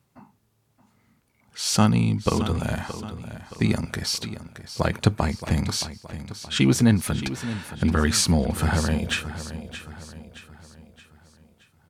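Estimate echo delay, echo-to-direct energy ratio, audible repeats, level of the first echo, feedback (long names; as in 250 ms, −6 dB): 622 ms, −11.5 dB, 4, −12.5 dB, 46%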